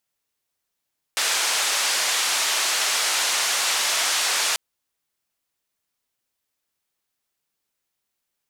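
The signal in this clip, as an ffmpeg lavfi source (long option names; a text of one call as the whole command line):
ffmpeg -f lavfi -i "anoisesrc=color=white:duration=3.39:sample_rate=44100:seed=1,highpass=frequency=700,lowpass=frequency=7400,volume=-12.7dB" out.wav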